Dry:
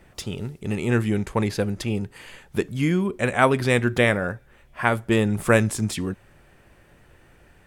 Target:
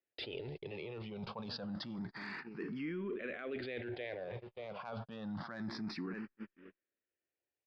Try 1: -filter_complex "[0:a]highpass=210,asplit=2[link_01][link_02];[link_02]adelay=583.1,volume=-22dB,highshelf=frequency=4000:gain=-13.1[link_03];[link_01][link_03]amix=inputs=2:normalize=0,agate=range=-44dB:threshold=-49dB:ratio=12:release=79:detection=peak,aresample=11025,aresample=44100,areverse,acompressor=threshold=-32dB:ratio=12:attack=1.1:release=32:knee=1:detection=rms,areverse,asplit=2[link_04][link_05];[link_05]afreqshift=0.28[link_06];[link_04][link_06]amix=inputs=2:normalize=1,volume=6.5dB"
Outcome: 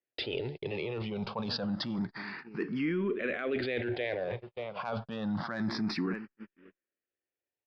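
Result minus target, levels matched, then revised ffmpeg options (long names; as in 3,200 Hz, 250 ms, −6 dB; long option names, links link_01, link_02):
downward compressor: peak gain reduction −9 dB
-filter_complex "[0:a]highpass=210,asplit=2[link_01][link_02];[link_02]adelay=583.1,volume=-22dB,highshelf=frequency=4000:gain=-13.1[link_03];[link_01][link_03]amix=inputs=2:normalize=0,agate=range=-44dB:threshold=-49dB:ratio=12:release=79:detection=peak,aresample=11025,aresample=44100,areverse,acompressor=threshold=-42dB:ratio=12:attack=1.1:release=32:knee=1:detection=rms,areverse,asplit=2[link_04][link_05];[link_05]afreqshift=0.28[link_06];[link_04][link_06]amix=inputs=2:normalize=1,volume=6.5dB"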